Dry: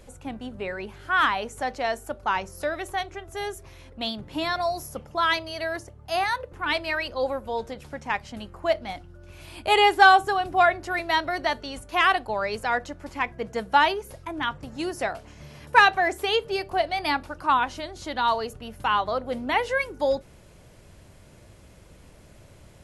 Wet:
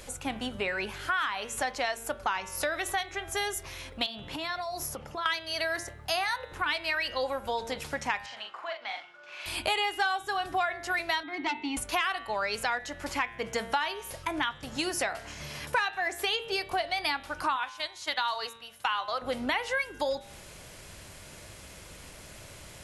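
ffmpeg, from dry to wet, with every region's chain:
ffmpeg -i in.wav -filter_complex "[0:a]asettb=1/sr,asplit=3[link_01][link_02][link_03];[link_01]atrim=end=4.064[link_04];[link_02]atrim=start=4.06:end=5.26,asetpts=PTS-STARTPTS,afade=type=in:duration=0.004:curve=qsin,afade=type=out:start_time=1.196:duration=0.004:curve=qsin,highshelf=frequency=4100:gain=-7.5,acompressor=threshold=-36dB:ratio=12:attack=3.2:release=140:knee=1:detection=peak[link_05];[link_03]atrim=start=5.256[link_06];[link_04][link_05]acrossfade=duration=0.004:curve1=hsin:curve2=qsin[link_07];[link_07][link_06]acrossfade=duration=0.004:curve1=qsin:curve2=hsin,asettb=1/sr,asplit=3[link_08][link_09][link_10];[link_08]atrim=end=8.264[link_11];[link_09]atrim=start=8.26:end=9.46,asetpts=PTS-STARTPTS,afade=type=in:duration=0.004:curve=qsin,afade=type=out:start_time=1.196:duration=0.004:curve=qsin,acompressor=threshold=-37dB:ratio=4:attack=3.2:release=140:knee=1:detection=peak,highpass=760,lowpass=3400,asplit=2[link_12][link_13];[link_13]adelay=41,volume=-5dB[link_14];[link_12][link_14]amix=inputs=2:normalize=0,atrim=end_sample=52920[link_15];[link_10]atrim=start=9.456[link_16];[link_11][link_15]acrossfade=duration=0.004:curve1=hsin:curve2=qsin[link_17];[link_17][link_16]acrossfade=duration=0.004:curve1=qsin:curve2=hsin,asettb=1/sr,asplit=3[link_18][link_19][link_20];[link_18]atrim=end=11.234[link_21];[link_19]atrim=start=11.23:end=11.77,asetpts=PTS-STARTPTS,afade=type=in:duration=0.004:curve=qsin,afade=type=out:start_time=0.536:duration=0.004:curve=qsin,asplit=3[link_22][link_23][link_24];[link_22]bandpass=frequency=300:width_type=q:width=8,volume=0dB[link_25];[link_23]bandpass=frequency=870:width_type=q:width=8,volume=-6dB[link_26];[link_24]bandpass=frequency=2240:width_type=q:width=8,volume=-9dB[link_27];[link_25][link_26][link_27]amix=inputs=3:normalize=0,aeval=exprs='0.0531*sin(PI/2*2.24*val(0)/0.0531)':channel_layout=same[link_28];[link_20]atrim=start=11.766[link_29];[link_21][link_28]acrossfade=duration=0.004:curve1=hsin:curve2=qsin[link_30];[link_30][link_29]acrossfade=duration=0.004:curve1=qsin:curve2=hsin,asettb=1/sr,asplit=3[link_31][link_32][link_33];[link_31]atrim=end=17.564[link_34];[link_32]atrim=start=17.56:end=19.22,asetpts=PTS-STARTPTS,afade=type=in:duration=0.004:curve=qsin,afade=type=out:start_time=1.656:duration=0.004:curve=qsin,highpass=120,agate=range=-11dB:threshold=-35dB:ratio=16:release=100:detection=peak,equalizer=frequency=230:width=0.6:gain=-11.5[link_35];[link_33]atrim=start=19.216[link_36];[link_34][link_35]acrossfade=duration=0.004:curve1=hsin:curve2=qsin[link_37];[link_37][link_36]acrossfade=duration=0.004:curve1=qsin:curve2=hsin,tiltshelf=frequency=860:gain=-6,bandreject=frequency=114.6:width_type=h:width=4,bandreject=frequency=229.2:width_type=h:width=4,bandreject=frequency=343.8:width_type=h:width=4,bandreject=frequency=458.4:width_type=h:width=4,bandreject=frequency=573:width_type=h:width=4,bandreject=frequency=687.6:width_type=h:width=4,bandreject=frequency=802.2:width_type=h:width=4,bandreject=frequency=916.8:width_type=h:width=4,bandreject=frequency=1031.4:width_type=h:width=4,bandreject=frequency=1146:width_type=h:width=4,bandreject=frequency=1260.6:width_type=h:width=4,bandreject=frequency=1375.2:width_type=h:width=4,bandreject=frequency=1489.8:width_type=h:width=4,bandreject=frequency=1604.4:width_type=h:width=4,bandreject=frequency=1719:width_type=h:width=4,bandreject=frequency=1833.6:width_type=h:width=4,bandreject=frequency=1948.2:width_type=h:width=4,bandreject=frequency=2062.8:width_type=h:width=4,bandreject=frequency=2177.4:width_type=h:width=4,bandreject=frequency=2292:width_type=h:width=4,bandreject=frequency=2406.6:width_type=h:width=4,bandreject=frequency=2521.2:width_type=h:width=4,bandreject=frequency=2635.8:width_type=h:width=4,bandreject=frequency=2750.4:width_type=h:width=4,bandreject=frequency=2865:width_type=h:width=4,bandreject=frequency=2979.6:width_type=h:width=4,bandreject=frequency=3094.2:width_type=h:width=4,bandreject=frequency=3208.8:width_type=h:width=4,bandreject=frequency=3323.4:width_type=h:width=4,bandreject=frequency=3438:width_type=h:width=4,bandreject=frequency=3552.6:width_type=h:width=4,bandreject=frequency=3667.2:width_type=h:width=4,bandreject=frequency=3781.8:width_type=h:width=4,bandreject=frequency=3896.4:width_type=h:width=4,bandreject=frequency=4011:width_type=h:width=4,acompressor=threshold=-33dB:ratio=6,volume=5.5dB" out.wav

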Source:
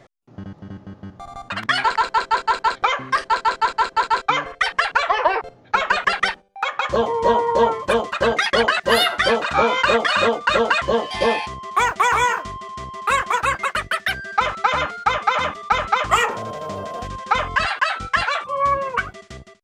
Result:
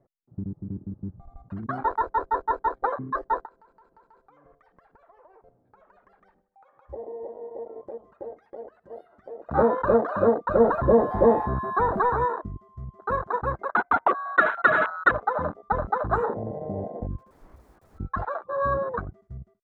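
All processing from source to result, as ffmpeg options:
ffmpeg -i in.wav -filter_complex "[0:a]asettb=1/sr,asplit=3[link_01][link_02][link_03];[link_01]atrim=end=3.454[link_04];[link_02]atrim=start=3.45:end=9.49,asetpts=PTS-STARTPTS,afade=type=in:duration=0.004:curve=qsin,afade=type=out:start_time=6.036:duration=0.004:curve=qsin,bandreject=frequency=50:width_type=h:width=6,bandreject=frequency=100:width_type=h:width=6,bandreject=frequency=150:width_type=h:width=6,acompressor=threshold=-31dB:ratio=8:attack=3.2:release=140:knee=1:detection=peak,aecho=1:1:78|156|234|312|390:0.1|0.058|0.0336|0.0195|0.0113,atrim=end_sample=266364[link_05];[link_03]atrim=start=9.486[link_06];[link_04][link_05]acrossfade=duration=0.004:curve1=hsin:curve2=qsin[link_07];[link_07][link_06]acrossfade=duration=0.004:curve1=qsin:curve2=hsin,asettb=1/sr,asplit=3[link_08][link_09][link_10];[link_08]atrim=end=10.604[link_11];[link_09]atrim=start=10.6:end=12.1,asetpts=PTS-STARTPTS,afade=type=in:duration=0.004:curve=qsin,afade=type=out:start_time=1.496:duration=0.004:curve=qsin,aeval=exprs='val(0)+0.5*0.0944*sgn(val(0))':channel_layout=same,equalizer=frequency=6400:width_type=o:width=0.61:gain=-8.5[link_12];[link_10]atrim=start=12.096[link_13];[link_11][link_12]acrossfade=duration=0.004:curve1=hsin:curve2=qsin[link_14];[link_14][link_13]acrossfade=duration=0.004:curve1=qsin:curve2=hsin,asettb=1/sr,asplit=3[link_15][link_16][link_17];[link_15]atrim=end=13.694[link_18];[link_16]atrim=start=13.69:end=15.11,asetpts=PTS-STARTPTS,afade=type=in:duration=0.004:curve=qsin,afade=type=out:start_time=1.416:duration=0.004:curve=qsin,highpass=690,equalizer=frequency=1100:width=0.93:gain=14,lowpass=frequency=2300:width_type=q:width=0.5098,lowpass=frequency=2300:width_type=q:width=0.6013,lowpass=frequency=2300:width_type=q:width=0.9,lowpass=frequency=2300:width_type=q:width=2.563,afreqshift=-2700[link_19];[link_17]atrim=start=15.106[link_20];[link_18][link_19]acrossfade=duration=0.004:curve1=hsin:curve2=qsin[link_21];[link_21][link_20]acrossfade=duration=0.004:curve1=qsin:curve2=hsin,asettb=1/sr,asplit=3[link_22][link_23][link_24];[link_22]atrim=end=17.184[link_25];[link_23]atrim=start=17.18:end=18,asetpts=PTS-STARTPTS,afade=type=in:duration=0.004:curve=qsin,afade=type=out:start_time=0.816:duration=0.004:curve=qsin,highshelf=frequency=5800:gain=-8,acompressor=threshold=-20dB:ratio=12:attack=3.2:release=140:knee=1:detection=peak,aeval=exprs='(mod(22.4*val(0)+1,2)-1)/22.4':channel_layout=same[link_26];[link_24]atrim=start=17.996[link_27];[link_25][link_26]acrossfade=duration=0.004:curve1=hsin:curve2=qsin[link_28];[link_28][link_27]acrossfade=duration=0.004:curve1=qsin:curve2=hsin,firequalizer=gain_entry='entry(310,0);entry(2800,-29);entry(9200,-26)':delay=0.05:min_phase=1,afwtdn=0.0398,volume=2dB" out.wav

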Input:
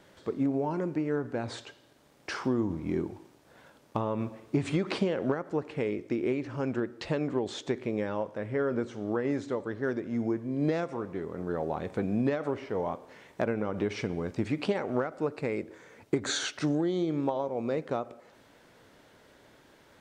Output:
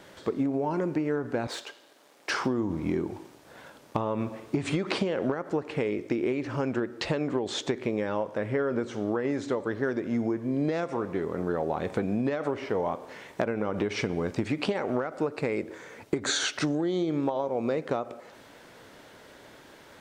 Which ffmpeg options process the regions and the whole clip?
ffmpeg -i in.wav -filter_complex "[0:a]asettb=1/sr,asplit=3[link_01][link_02][link_03];[link_01]atrim=end=1.474[link_04];[link_02]atrim=start=1.47:end=2.3,asetpts=PTS-STARTPTS,afade=type=in:duration=0.004:curve=qsin,afade=type=out:start_time=0.826:duration=0.004:curve=qsin,aeval=exprs='if(lt(val(0),0),0.447*val(0),val(0))':channel_layout=same,highpass=320[link_05];[link_03]atrim=start=2.296[link_06];[link_04][link_05]acrossfade=duration=0.004:curve1=hsin:curve2=qsin[link_07];[link_07][link_06]acrossfade=duration=0.004:curve1=qsin:curve2=hsin,lowshelf=frequency=230:gain=-4.5,acompressor=threshold=-32dB:ratio=6,volume=8dB" out.wav

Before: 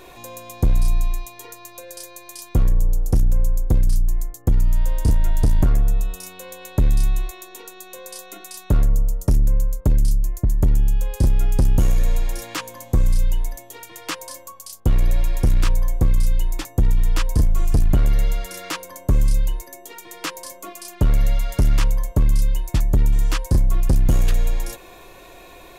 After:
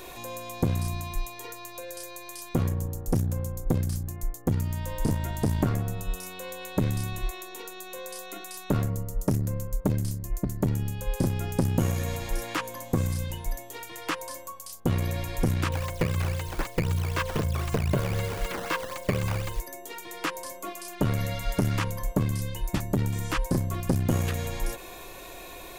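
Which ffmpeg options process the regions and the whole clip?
ffmpeg -i in.wav -filter_complex "[0:a]asettb=1/sr,asplit=3[link_01][link_02][link_03];[link_01]atrim=end=15.724[link_04];[link_02]atrim=start=15.72:end=19.6,asetpts=PTS-STARTPTS,afade=type=in:duration=0.004:curve=qsin,afade=type=out:start_time=3.876:duration=0.004:curve=qsin,aecho=1:1:1.9:0.6,atrim=end_sample=171108,acrusher=samples=11:mix=1:aa=0.000001:lfo=1:lforange=17.6:lforate=3.9[link_05];[link_03]atrim=start=19.596[link_06];[link_04][link_05]acrossfade=duration=0.004:curve1=hsin:curve2=qsin[link_07];[link_07][link_06]acrossfade=duration=0.004:curve1=qsin:curve2=hsin,acrossover=split=2700[link_08][link_09];[link_09]acompressor=threshold=-42dB:ratio=4:attack=1:release=60[link_10];[link_08][link_10]amix=inputs=2:normalize=0,afftfilt=real='re*lt(hypot(re,im),1.26)':imag='im*lt(hypot(re,im),1.26)':win_size=1024:overlap=0.75,highshelf=frequency=5200:gain=7" out.wav

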